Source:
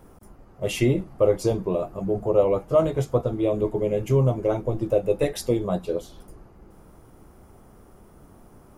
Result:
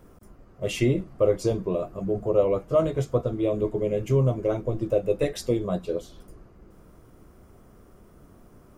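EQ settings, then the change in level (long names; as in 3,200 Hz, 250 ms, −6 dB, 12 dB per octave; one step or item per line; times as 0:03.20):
parametric band 840 Hz −8.5 dB 0.27 octaves
parametric band 11,000 Hz −10 dB 0.24 octaves
−1.5 dB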